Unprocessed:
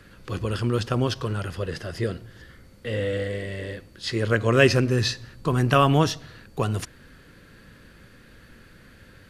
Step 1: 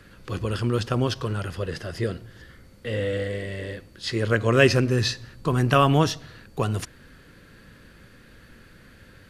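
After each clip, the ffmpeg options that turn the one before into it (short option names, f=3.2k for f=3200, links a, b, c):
-af anull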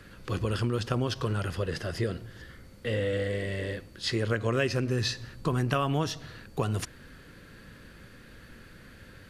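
-af "acompressor=threshold=-25dB:ratio=4"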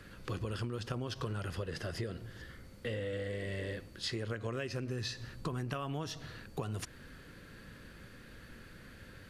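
-af "acompressor=threshold=-32dB:ratio=6,volume=-2.5dB"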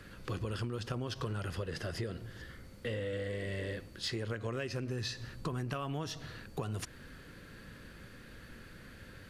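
-af "asoftclip=type=tanh:threshold=-24dB,volume=1dB"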